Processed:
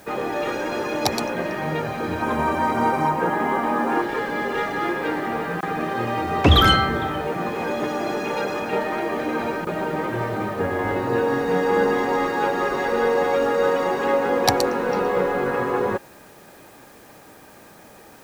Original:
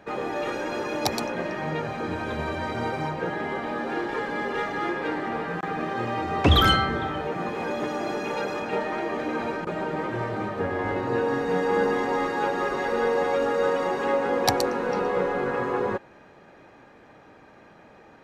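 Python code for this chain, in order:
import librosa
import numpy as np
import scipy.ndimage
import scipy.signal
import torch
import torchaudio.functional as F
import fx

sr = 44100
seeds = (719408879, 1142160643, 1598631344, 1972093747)

p1 = fx.graphic_eq_15(x, sr, hz=(100, 250, 1000, 4000, 10000), db=(-6, 6, 10, -6, 8), at=(2.22, 4.02))
p2 = fx.quant_dither(p1, sr, seeds[0], bits=8, dither='triangular')
y = p1 + (p2 * librosa.db_to_amplitude(-5.5))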